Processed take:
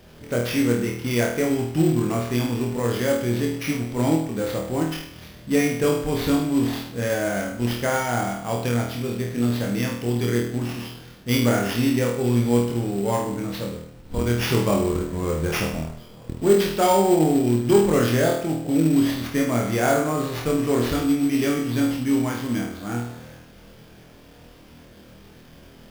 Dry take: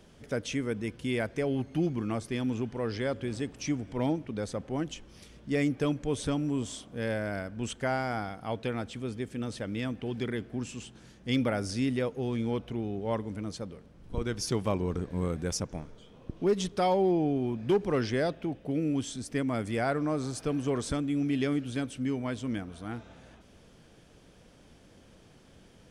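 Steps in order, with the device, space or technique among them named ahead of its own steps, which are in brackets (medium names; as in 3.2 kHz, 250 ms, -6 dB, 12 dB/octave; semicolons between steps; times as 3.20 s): flutter echo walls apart 4.3 m, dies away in 0.63 s; early companding sampler (sample-rate reducer 8.1 kHz, jitter 0%; companded quantiser 6-bit); trim +5.5 dB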